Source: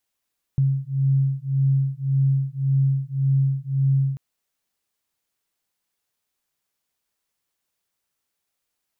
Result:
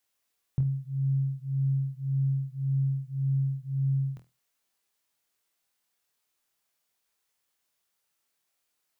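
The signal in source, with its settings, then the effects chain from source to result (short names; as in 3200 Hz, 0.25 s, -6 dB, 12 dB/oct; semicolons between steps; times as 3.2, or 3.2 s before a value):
beating tones 135 Hz, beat 1.8 Hz, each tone -21 dBFS 3.59 s
low shelf 290 Hz -6 dB; on a send: flutter echo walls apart 4.2 m, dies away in 0.24 s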